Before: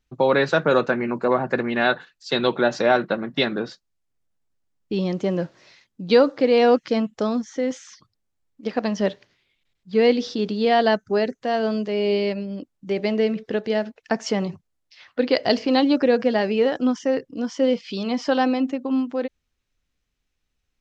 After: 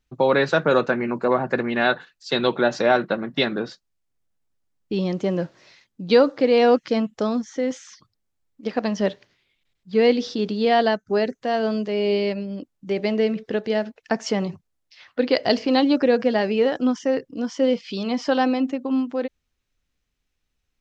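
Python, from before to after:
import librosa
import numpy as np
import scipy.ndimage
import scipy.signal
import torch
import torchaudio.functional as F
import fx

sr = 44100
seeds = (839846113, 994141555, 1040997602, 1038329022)

y = fx.edit(x, sr, fx.fade_out_to(start_s=10.82, length_s=0.26, floor_db=-8.5), tone=tone)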